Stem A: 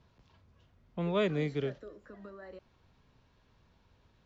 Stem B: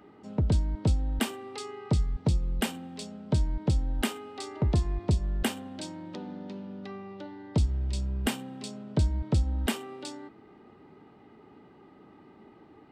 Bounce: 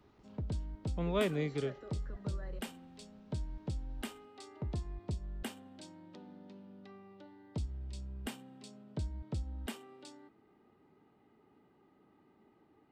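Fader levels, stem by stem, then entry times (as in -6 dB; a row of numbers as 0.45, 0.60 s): -2.5, -13.0 dB; 0.00, 0.00 s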